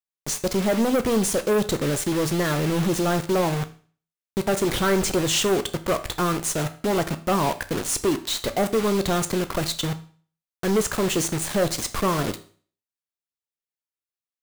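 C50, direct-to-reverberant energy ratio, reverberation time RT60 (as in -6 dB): 15.5 dB, 9.0 dB, 0.45 s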